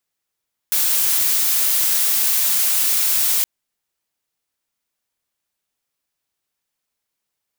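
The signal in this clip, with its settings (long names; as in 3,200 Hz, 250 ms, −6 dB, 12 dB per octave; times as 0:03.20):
noise blue, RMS −17.5 dBFS 2.72 s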